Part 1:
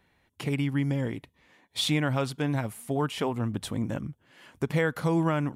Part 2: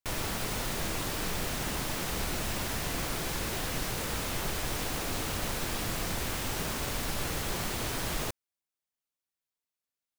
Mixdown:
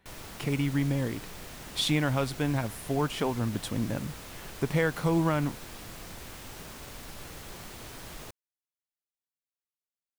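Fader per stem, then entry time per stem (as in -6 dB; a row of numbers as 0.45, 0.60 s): -0.5, -10.5 dB; 0.00, 0.00 s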